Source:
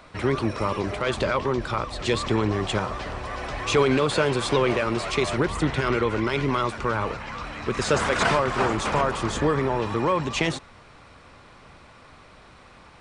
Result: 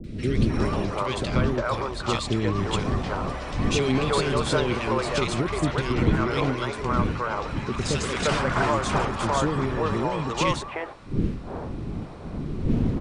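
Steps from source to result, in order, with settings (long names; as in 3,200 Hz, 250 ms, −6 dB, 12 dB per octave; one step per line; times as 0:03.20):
wind on the microphone 260 Hz −29 dBFS
three-band delay without the direct sound lows, highs, mids 40/350 ms, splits 440/1,900 Hz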